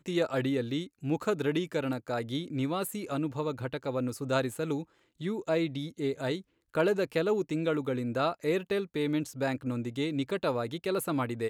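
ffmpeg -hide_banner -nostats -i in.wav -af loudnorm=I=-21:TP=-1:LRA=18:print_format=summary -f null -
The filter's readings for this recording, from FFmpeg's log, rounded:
Input Integrated:    -31.7 LUFS
Input True Peak:     -14.3 dBTP
Input LRA:             2.1 LU
Input Threshold:     -41.8 LUFS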